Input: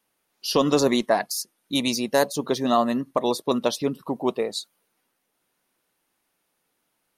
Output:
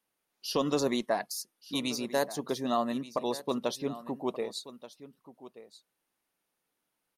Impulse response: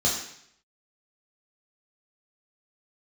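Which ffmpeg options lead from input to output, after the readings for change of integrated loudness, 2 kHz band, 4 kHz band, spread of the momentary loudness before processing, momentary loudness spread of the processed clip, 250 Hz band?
−8.5 dB, −8.5 dB, −8.5 dB, 8 LU, 21 LU, −8.5 dB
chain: -af "aecho=1:1:1180:0.158,volume=-8.5dB"

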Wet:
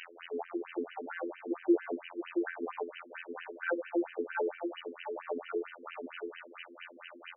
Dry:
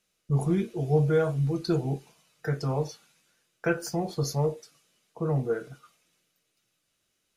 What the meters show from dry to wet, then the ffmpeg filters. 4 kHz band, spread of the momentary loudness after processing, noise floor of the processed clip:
−6.5 dB, 14 LU, −54 dBFS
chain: -af "aeval=exprs='val(0)+0.5*0.0224*sgn(val(0))':channel_layout=same,afftfilt=real='hypot(re,im)*cos(PI*b)':imag='0':win_size=2048:overlap=0.75,highshelf=frequency=7400:gain=-4.5,acontrast=49,equalizer=frequency=5200:width=0.34:gain=2.5,aecho=1:1:670:0.501,afftfilt=real='re*between(b*sr/1024,320*pow(2200/320,0.5+0.5*sin(2*PI*4.4*pts/sr))/1.41,320*pow(2200/320,0.5+0.5*sin(2*PI*4.4*pts/sr))*1.41)':imag='im*between(b*sr/1024,320*pow(2200/320,0.5+0.5*sin(2*PI*4.4*pts/sr))/1.41,320*pow(2200/320,0.5+0.5*sin(2*PI*4.4*pts/sr))*1.41)':win_size=1024:overlap=0.75,volume=-3dB"

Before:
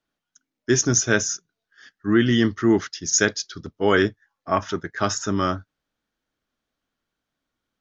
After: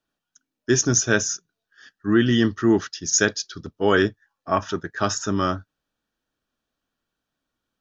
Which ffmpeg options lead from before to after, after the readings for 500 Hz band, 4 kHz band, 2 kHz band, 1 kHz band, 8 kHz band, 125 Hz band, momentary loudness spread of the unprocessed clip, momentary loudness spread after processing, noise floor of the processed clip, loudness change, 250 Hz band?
0.0 dB, 0.0 dB, 0.0 dB, 0.0 dB, can't be measured, 0.0 dB, 13 LU, 13 LU, −84 dBFS, 0.0 dB, 0.0 dB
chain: -af "asuperstop=centerf=2100:order=4:qfactor=7.9"

